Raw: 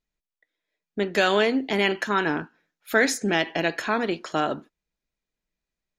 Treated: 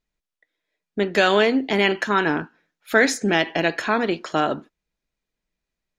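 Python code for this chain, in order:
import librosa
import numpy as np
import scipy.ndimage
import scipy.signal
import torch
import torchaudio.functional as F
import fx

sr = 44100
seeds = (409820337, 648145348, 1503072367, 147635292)

y = fx.high_shelf(x, sr, hz=11000.0, db=-10.5)
y = y * 10.0 ** (3.5 / 20.0)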